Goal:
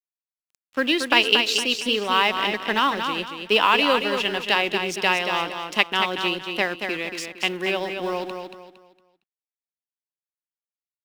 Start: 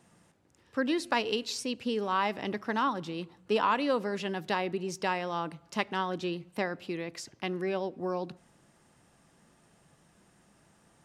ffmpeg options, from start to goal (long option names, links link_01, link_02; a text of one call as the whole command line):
ffmpeg -i in.wav -filter_complex "[0:a]highpass=230,highshelf=frequency=10000:gain=8,aeval=exprs='sgn(val(0))*max(abs(val(0))-0.00355,0)':channel_layout=same,equalizer=frequency=2800:width_type=o:width=1:gain=11.5,acrusher=bits=8:mode=log:mix=0:aa=0.000001,asplit=2[link_01][link_02];[link_02]aecho=0:1:230|460|690|920:0.473|0.151|0.0485|0.0155[link_03];[link_01][link_03]amix=inputs=2:normalize=0,volume=6.5dB" out.wav